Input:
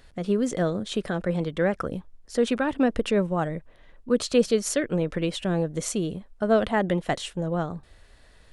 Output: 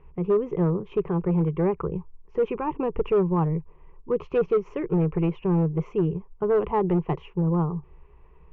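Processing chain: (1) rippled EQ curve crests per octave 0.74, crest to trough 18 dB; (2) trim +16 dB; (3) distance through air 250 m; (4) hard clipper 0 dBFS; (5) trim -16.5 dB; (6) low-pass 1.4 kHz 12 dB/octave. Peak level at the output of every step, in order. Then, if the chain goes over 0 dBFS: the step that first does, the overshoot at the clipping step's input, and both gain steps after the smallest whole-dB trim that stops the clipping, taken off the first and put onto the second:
-6.5 dBFS, +9.5 dBFS, +8.5 dBFS, 0.0 dBFS, -16.5 dBFS, -16.0 dBFS; step 2, 8.5 dB; step 2 +7 dB, step 5 -7.5 dB

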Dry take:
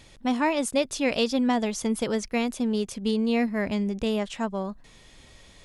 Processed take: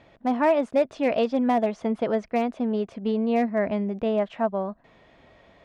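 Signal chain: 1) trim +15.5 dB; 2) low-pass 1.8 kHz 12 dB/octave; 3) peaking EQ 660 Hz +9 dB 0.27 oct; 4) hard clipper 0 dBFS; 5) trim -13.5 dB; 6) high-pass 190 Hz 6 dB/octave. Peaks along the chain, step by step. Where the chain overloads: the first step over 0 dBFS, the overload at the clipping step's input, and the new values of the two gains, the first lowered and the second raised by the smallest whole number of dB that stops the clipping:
+4.0 dBFS, +2.0 dBFS, +3.5 dBFS, 0.0 dBFS, -13.5 dBFS, -12.0 dBFS; step 1, 3.5 dB; step 1 +11.5 dB, step 5 -9.5 dB

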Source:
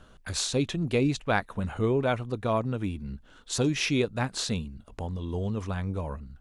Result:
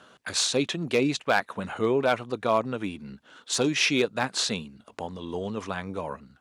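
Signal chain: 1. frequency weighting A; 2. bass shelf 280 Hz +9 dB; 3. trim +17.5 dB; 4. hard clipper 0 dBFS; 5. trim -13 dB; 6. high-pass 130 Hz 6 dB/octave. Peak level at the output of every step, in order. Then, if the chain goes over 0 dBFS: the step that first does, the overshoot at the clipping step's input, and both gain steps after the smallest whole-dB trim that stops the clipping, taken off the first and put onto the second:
-10.0 dBFS, -8.5 dBFS, +9.0 dBFS, 0.0 dBFS, -13.0 dBFS, -11.5 dBFS; step 3, 9.0 dB; step 3 +8.5 dB, step 5 -4 dB

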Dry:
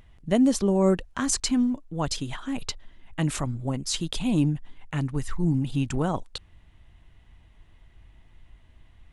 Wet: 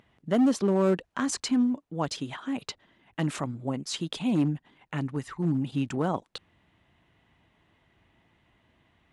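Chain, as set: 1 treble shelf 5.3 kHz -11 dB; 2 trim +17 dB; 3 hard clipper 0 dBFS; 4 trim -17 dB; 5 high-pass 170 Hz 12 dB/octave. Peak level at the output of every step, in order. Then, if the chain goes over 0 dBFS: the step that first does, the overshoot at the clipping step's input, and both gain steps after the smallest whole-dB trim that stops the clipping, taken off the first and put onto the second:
-9.5 dBFS, +7.5 dBFS, 0.0 dBFS, -17.0 dBFS, -13.5 dBFS; step 2, 7.5 dB; step 2 +9 dB, step 4 -9 dB

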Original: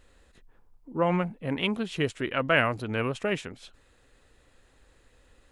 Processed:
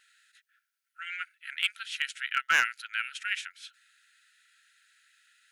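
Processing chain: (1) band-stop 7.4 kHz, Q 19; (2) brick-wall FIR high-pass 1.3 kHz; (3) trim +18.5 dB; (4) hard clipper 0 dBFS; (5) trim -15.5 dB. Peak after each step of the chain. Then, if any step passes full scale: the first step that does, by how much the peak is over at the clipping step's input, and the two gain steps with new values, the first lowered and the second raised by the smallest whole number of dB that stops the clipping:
-9.0 dBFS, -9.5 dBFS, +9.0 dBFS, 0.0 dBFS, -15.5 dBFS; step 3, 9.0 dB; step 3 +9.5 dB, step 5 -6.5 dB

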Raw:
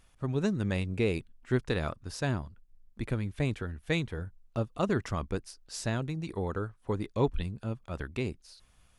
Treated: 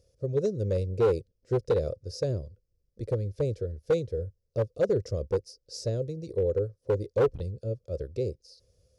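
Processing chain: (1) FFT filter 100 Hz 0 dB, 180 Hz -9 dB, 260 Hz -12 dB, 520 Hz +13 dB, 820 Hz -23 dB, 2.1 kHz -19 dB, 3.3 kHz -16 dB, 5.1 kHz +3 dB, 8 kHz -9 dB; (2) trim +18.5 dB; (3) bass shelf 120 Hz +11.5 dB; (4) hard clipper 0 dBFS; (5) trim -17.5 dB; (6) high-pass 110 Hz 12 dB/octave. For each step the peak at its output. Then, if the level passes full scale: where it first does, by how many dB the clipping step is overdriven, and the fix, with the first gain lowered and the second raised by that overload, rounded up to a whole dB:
-13.0 dBFS, +5.5 dBFS, +7.5 dBFS, 0.0 dBFS, -17.5 dBFS, -14.0 dBFS; step 2, 7.5 dB; step 2 +10.5 dB, step 5 -9.5 dB

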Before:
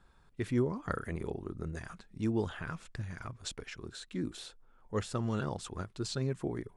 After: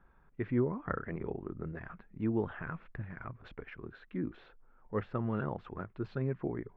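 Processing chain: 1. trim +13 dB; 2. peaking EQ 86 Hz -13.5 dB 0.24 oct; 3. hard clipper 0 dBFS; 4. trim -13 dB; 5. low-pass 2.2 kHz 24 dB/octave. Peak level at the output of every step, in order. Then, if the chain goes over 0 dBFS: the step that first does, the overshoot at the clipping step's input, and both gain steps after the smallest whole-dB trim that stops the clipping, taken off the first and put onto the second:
-5.0 dBFS, -4.5 dBFS, -4.5 dBFS, -17.5 dBFS, -18.0 dBFS; nothing clips

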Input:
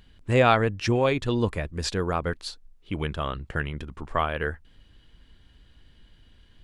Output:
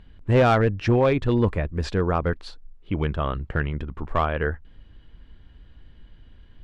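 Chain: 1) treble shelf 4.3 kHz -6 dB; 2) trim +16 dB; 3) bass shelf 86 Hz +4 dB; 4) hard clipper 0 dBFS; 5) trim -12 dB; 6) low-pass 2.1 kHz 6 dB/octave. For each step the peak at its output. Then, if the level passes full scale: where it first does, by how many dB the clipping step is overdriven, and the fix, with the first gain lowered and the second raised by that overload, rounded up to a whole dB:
-7.0 dBFS, +9.0 dBFS, +8.5 dBFS, 0.0 dBFS, -12.0 dBFS, -12.0 dBFS; step 2, 8.5 dB; step 2 +7 dB, step 5 -3 dB

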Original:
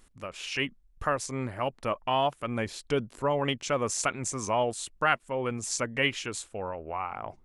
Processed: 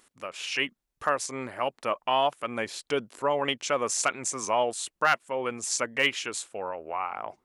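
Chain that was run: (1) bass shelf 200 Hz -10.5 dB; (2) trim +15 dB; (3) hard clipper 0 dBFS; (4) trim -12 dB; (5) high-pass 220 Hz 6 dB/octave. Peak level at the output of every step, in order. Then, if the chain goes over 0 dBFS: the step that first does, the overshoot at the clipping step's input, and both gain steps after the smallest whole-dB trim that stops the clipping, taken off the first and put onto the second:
-9.5 dBFS, +5.5 dBFS, 0.0 dBFS, -12.0 dBFS, -11.0 dBFS; step 2, 5.5 dB; step 2 +9 dB, step 4 -6 dB

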